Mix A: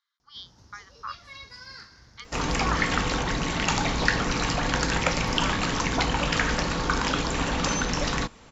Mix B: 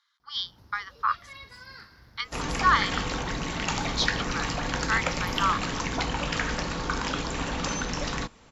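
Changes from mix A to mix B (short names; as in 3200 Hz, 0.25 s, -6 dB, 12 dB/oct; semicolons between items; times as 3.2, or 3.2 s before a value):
speech +11.0 dB; first sound: remove synth low-pass 6600 Hz, resonance Q 4.9; second sound -4.0 dB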